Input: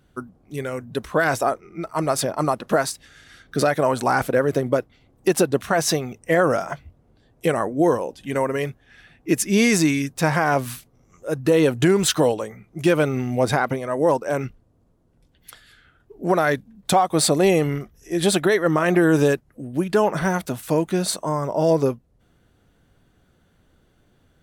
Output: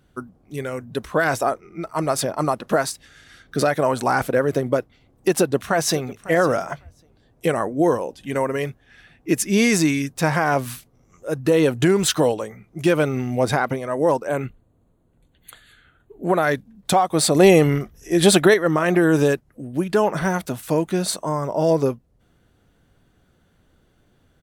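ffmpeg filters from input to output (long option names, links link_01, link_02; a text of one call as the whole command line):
ffmpeg -i in.wav -filter_complex "[0:a]asplit=2[link_01][link_02];[link_02]afade=type=in:start_time=5.38:duration=0.01,afade=type=out:start_time=6.08:duration=0.01,aecho=0:1:550|1100:0.133352|0.0133352[link_03];[link_01][link_03]amix=inputs=2:normalize=0,asettb=1/sr,asplit=3[link_04][link_05][link_06];[link_04]atrim=end=14.274[link_07];[link_05]atrim=start=14.27:end=16.43,asetpts=PTS-STARTPTS,afade=type=in:duration=0.004:curve=qsin,afade=type=out:start_time=2.156:duration=0.004:curve=qsin,asuperstop=centerf=5300:order=8:qfactor=3[link_08];[link_06]atrim=start=16.426[link_09];[link_07][link_08]acrossfade=duration=0.004:curve1=hsin:curve2=qsin[link_10];[link_10][link_09]acrossfade=duration=0.004:curve1=qsin:curve2=hsin,asplit=3[link_11][link_12][link_13];[link_11]atrim=end=17.352[link_14];[link_12]atrim=start=17.348:end=18.542,asetpts=PTS-STARTPTS,volume=5dB[link_15];[link_13]atrim=start=18.538[link_16];[link_14][link_15]acrossfade=duration=0.004:curve1=hsin:curve2=hsin[link_17];[link_17][link_16]acrossfade=duration=0.004:curve1=hsin:curve2=hsin" out.wav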